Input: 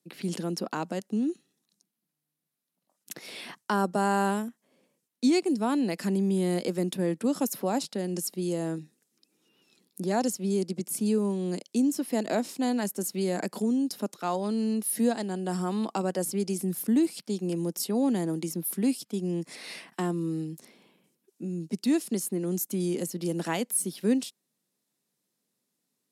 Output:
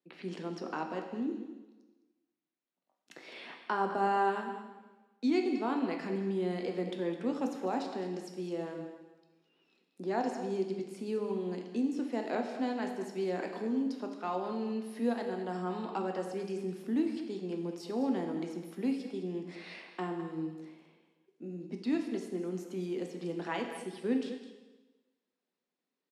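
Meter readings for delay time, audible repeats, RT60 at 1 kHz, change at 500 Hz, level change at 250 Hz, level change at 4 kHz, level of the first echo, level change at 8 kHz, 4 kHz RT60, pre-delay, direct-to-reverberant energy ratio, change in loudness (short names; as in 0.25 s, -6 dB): 0.209 s, 1, 1.2 s, -4.0 dB, -7.0 dB, -9.0 dB, -12.5 dB, -22.5 dB, 1.1 s, 5 ms, 2.5 dB, -6.5 dB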